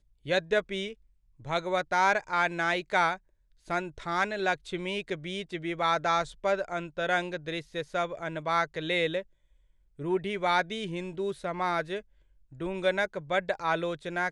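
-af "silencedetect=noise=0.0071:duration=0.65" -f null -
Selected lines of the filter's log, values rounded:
silence_start: 9.22
silence_end: 9.99 | silence_duration: 0.77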